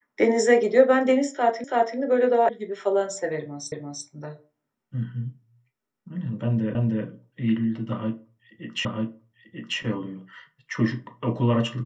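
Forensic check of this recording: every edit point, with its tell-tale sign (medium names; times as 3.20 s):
1.64 s: repeat of the last 0.33 s
2.49 s: sound stops dead
3.72 s: repeat of the last 0.34 s
6.75 s: repeat of the last 0.31 s
8.85 s: repeat of the last 0.94 s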